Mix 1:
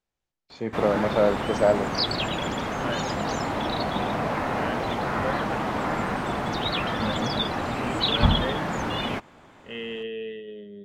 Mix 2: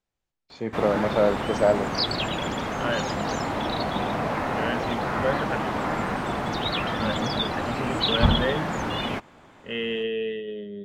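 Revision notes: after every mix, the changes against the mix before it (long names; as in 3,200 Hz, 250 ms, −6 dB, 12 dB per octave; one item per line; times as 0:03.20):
second voice +5.5 dB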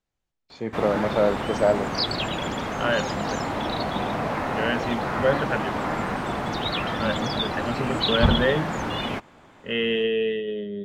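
second voice +4.5 dB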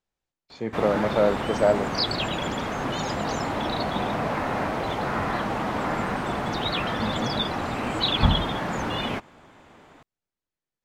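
second voice: muted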